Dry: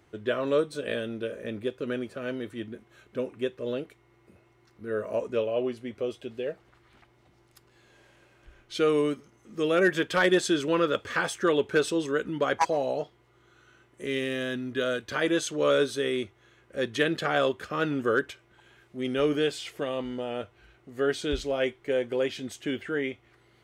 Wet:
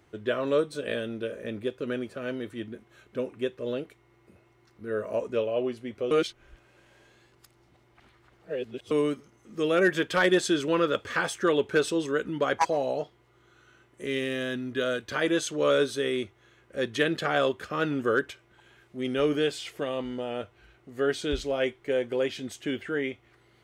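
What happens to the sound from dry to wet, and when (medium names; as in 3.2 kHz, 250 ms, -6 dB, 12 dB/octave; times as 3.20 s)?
6.11–8.91 s: reverse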